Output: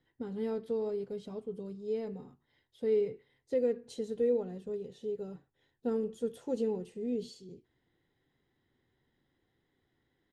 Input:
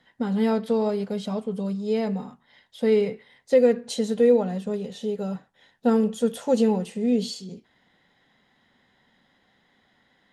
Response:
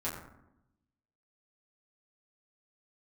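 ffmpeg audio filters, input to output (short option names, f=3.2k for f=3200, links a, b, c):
-af "firequalizer=gain_entry='entry(130,0);entry(200,-14);entry(340,1);entry(590,-14)':delay=0.05:min_phase=1,volume=-3.5dB"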